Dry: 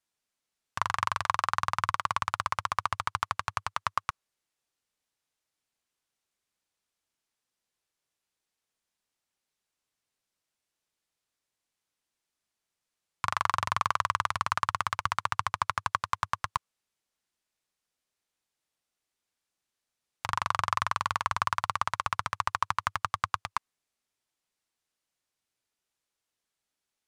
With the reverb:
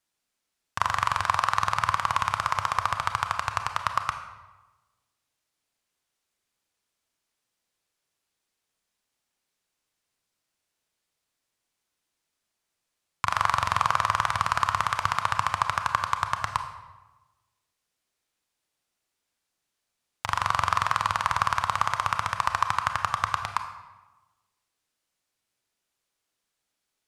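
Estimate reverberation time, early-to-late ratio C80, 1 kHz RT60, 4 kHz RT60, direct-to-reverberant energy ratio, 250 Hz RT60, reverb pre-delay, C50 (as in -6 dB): 1.1 s, 10.0 dB, 1.2 s, 0.80 s, 6.5 dB, 1.3 s, 27 ms, 8.0 dB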